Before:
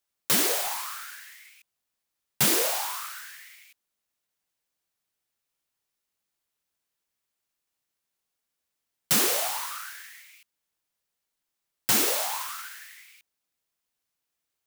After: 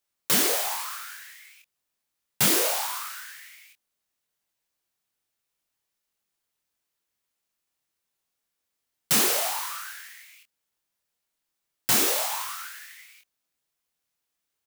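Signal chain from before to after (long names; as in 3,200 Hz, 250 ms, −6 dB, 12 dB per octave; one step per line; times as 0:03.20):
double-tracking delay 25 ms −5 dB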